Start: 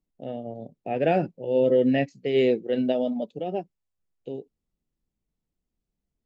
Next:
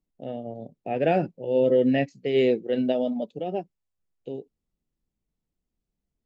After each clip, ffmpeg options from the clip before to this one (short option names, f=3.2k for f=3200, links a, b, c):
-af anull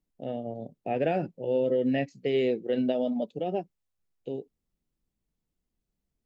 -af "acompressor=threshold=-23dB:ratio=4"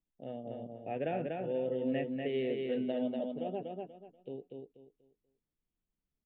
-filter_complex "[0:a]asplit=2[a][b];[b]aecho=0:1:242|484|726|968:0.668|0.18|0.0487|0.0132[c];[a][c]amix=inputs=2:normalize=0,aresample=8000,aresample=44100,volume=-8.5dB"